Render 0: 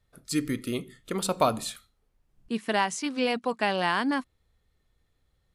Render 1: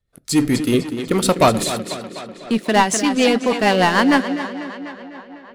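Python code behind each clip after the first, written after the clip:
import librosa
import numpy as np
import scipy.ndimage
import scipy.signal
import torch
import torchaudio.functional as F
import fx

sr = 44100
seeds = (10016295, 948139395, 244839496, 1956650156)

y = fx.leveller(x, sr, passes=3)
y = fx.echo_tape(y, sr, ms=249, feedback_pct=72, wet_db=-6.5, lp_hz=5500.0, drive_db=14.0, wow_cents=21)
y = fx.rotary(y, sr, hz=6.7)
y = y * librosa.db_to_amplitude(4.0)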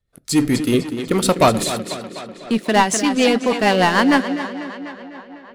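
y = x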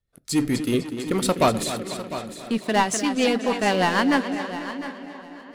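y = fx.echo_feedback(x, sr, ms=703, feedback_pct=20, wet_db=-13.0)
y = y * librosa.db_to_amplitude(-5.5)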